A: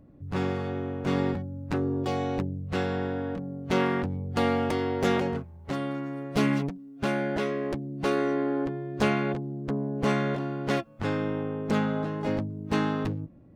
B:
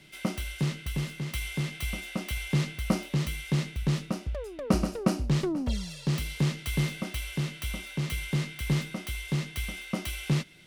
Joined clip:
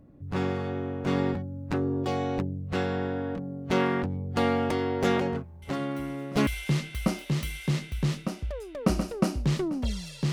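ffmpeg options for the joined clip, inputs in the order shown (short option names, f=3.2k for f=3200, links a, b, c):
-filter_complex "[1:a]asplit=2[a][b];[0:a]apad=whole_dur=10.32,atrim=end=10.32,atrim=end=6.472[c];[b]atrim=start=2.308:end=6.16[d];[a]atrim=start=1.46:end=2.31,asetpts=PTS-STARTPTS,volume=-15dB,afade=t=in:d=0.004:c=hsin,afade=t=out:st=0.846:d=0.004:c=hsin,adelay=5620[e];[c][d]acrossfade=d=0.004:c1=hsin:c2=hsin[f];[f][e]amix=inputs=2:normalize=0"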